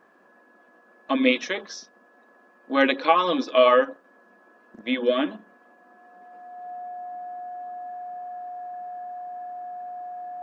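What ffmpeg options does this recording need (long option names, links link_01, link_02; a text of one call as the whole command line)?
ffmpeg -i in.wav -af "bandreject=frequency=720:width=30" out.wav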